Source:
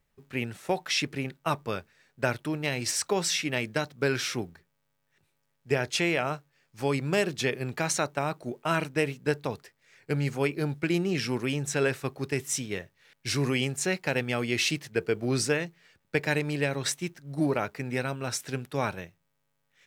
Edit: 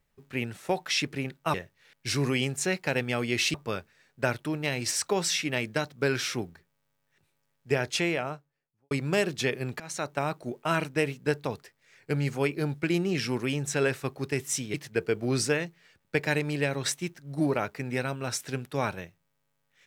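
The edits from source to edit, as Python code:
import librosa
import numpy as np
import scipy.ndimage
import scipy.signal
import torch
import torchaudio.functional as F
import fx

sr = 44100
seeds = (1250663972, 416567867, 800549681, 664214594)

y = fx.studio_fade_out(x, sr, start_s=5.89, length_s=1.02)
y = fx.edit(y, sr, fx.fade_in_from(start_s=7.8, length_s=0.38, floor_db=-22.5),
    fx.move(start_s=12.74, length_s=2.0, to_s=1.54), tone=tone)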